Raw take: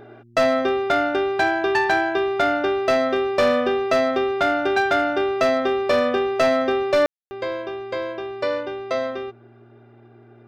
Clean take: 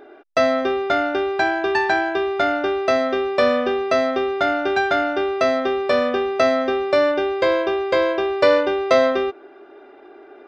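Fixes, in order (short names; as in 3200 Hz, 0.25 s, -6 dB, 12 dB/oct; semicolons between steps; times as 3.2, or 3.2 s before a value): clip repair -12.5 dBFS; de-hum 117.6 Hz, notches 3; room tone fill 7.06–7.31; gain correction +9 dB, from 7.27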